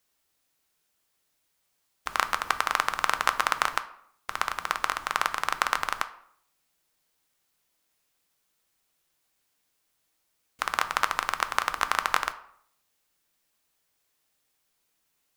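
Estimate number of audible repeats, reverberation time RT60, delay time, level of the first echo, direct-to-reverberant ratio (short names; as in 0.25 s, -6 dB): none, 0.65 s, none, none, 9.5 dB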